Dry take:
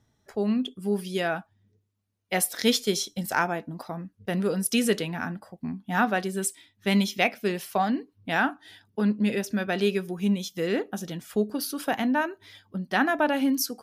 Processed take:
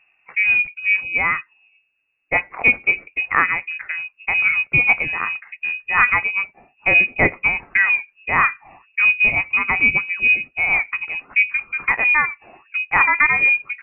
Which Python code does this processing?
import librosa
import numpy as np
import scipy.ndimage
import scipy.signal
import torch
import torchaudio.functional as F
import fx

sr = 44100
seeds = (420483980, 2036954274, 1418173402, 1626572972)

y = fx.freq_invert(x, sr, carrier_hz=2700)
y = y * librosa.db_to_amplitude(8.0)